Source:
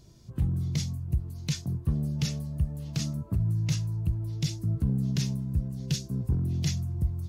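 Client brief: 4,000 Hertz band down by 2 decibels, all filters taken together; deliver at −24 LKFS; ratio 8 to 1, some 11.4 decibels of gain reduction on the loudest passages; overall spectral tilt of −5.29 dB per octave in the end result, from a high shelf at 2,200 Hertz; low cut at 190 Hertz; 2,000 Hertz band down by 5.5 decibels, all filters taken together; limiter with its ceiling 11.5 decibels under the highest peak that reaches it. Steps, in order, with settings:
high-pass filter 190 Hz
parametric band 2,000 Hz −8.5 dB
high-shelf EQ 2,200 Hz +7 dB
parametric band 4,000 Hz −8.5 dB
downward compressor 8 to 1, threshold −40 dBFS
level +22 dB
brickwall limiter −14.5 dBFS

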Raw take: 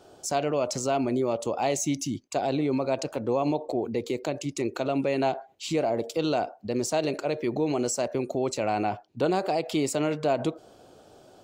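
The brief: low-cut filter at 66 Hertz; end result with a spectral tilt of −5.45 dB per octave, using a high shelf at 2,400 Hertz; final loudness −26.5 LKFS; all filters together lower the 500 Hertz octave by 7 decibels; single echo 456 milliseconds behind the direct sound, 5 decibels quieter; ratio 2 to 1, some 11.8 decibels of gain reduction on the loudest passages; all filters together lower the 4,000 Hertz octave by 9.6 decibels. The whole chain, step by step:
high-pass filter 66 Hz
parametric band 500 Hz −9 dB
high-shelf EQ 2,400 Hz −5 dB
parametric band 4,000 Hz −8 dB
downward compressor 2 to 1, threshold −48 dBFS
single-tap delay 456 ms −5 dB
level +16 dB

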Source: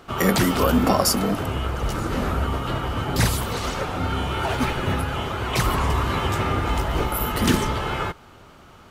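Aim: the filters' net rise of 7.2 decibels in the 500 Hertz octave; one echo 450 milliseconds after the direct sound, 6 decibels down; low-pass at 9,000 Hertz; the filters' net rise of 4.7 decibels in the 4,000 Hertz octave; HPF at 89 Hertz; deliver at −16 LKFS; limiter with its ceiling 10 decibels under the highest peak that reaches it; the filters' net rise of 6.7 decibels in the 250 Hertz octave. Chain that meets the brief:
high-pass filter 89 Hz
low-pass filter 9,000 Hz
parametric band 250 Hz +6.5 dB
parametric band 500 Hz +7 dB
parametric band 4,000 Hz +6.5 dB
brickwall limiter −10 dBFS
single-tap delay 450 ms −6 dB
level +4.5 dB

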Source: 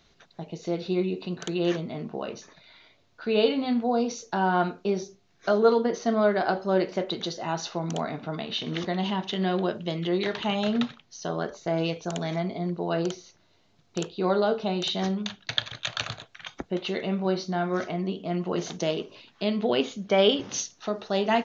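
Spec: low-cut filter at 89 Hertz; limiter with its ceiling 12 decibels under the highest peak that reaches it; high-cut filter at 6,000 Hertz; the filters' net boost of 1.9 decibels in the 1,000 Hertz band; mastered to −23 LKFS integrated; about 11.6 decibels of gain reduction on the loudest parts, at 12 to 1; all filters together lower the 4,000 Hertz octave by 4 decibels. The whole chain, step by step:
high-pass filter 89 Hz
low-pass filter 6,000 Hz
parametric band 1,000 Hz +3 dB
parametric band 4,000 Hz −5 dB
downward compressor 12 to 1, threshold −26 dBFS
level +11 dB
brickwall limiter −11 dBFS

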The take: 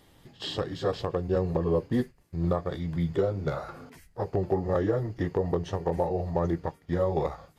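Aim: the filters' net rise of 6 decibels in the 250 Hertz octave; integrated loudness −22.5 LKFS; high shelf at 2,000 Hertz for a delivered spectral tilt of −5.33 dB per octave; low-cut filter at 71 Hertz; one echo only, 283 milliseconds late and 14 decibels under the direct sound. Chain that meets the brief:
high-pass filter 71 Hz
parametric band 250 Hz +9 dB
high-shelf EQ 2,000 Hz −3 dB
single-tap delay 283 ms −14 dB
level +3.5 dB

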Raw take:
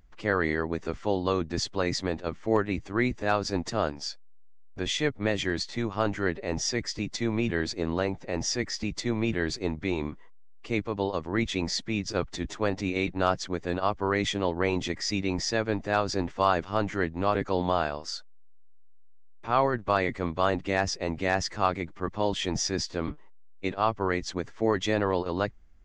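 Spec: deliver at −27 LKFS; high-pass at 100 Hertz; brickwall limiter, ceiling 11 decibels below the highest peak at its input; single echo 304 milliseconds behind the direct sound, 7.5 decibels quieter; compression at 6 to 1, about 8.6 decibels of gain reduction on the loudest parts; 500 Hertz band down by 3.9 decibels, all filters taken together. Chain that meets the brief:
high-pass filter 100 Hz
parametric band 500 Hz −5 dB
downward compressor 6 to 1, threshold −29 dBFS
brickwall limiter −27.5 dBFS
single-tap delay 304 ms −7.5 dB
level +11.5 dB

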